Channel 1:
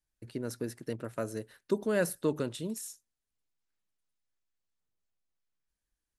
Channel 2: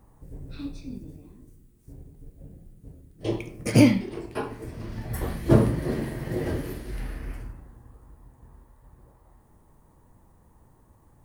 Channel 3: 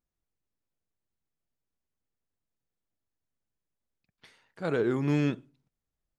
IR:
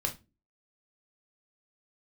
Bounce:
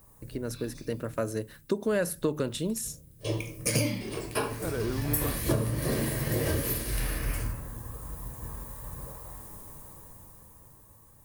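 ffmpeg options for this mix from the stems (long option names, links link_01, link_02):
-filter_complex "[0:a]dynaudnorm=framelen=220:gausssize=11:maxgain=4.5dB,volume=1.5dB,asplit=3[link_01][link_02][link_03];[link_02]volume=-19dB[link_04];[1:a]dynaudnorm=framelen=300:gausssize=13:maxgain=16dB,crystalizer=i=3.5:c=0,lowshelf=frequency=87:gain=-7,volume=-5dB,asplit=2[link_05][link_06];[link_06]volume=-8.5dB[link_07];[2:a]volume=-5.5dB[link_08];[link_03]apad=whole_len=496109[link_09];[link_05][link_09]sidechaincompress=threshold=-44dB:ratio=8:attack=16:release=1040[link_10];[3:a]atrim=start_sample=2205[link_11];[link_04][link_07]amix=inputs=2:normalize=0[link_12];[link_12][link_11]afir=irnorm=-1:irlink=0[link_13];[link_01][link_10][link_08][link_13]amix=inputs=4:normalize=0,acompressor=threshold=-23dB:ratio=16"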